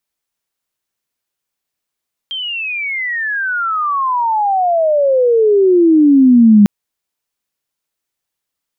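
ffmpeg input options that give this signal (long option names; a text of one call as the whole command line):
ffmpeg -f lavfi -i "aevalsrc='pow(10,(-19.5+16.5*t/4.35)/20)*sin(2*PI*3200*4.35/log(200/3200)*(exp(log(200/3200)*t/4.35)-1))':duration=4.35:sample_rate=44100" out.wav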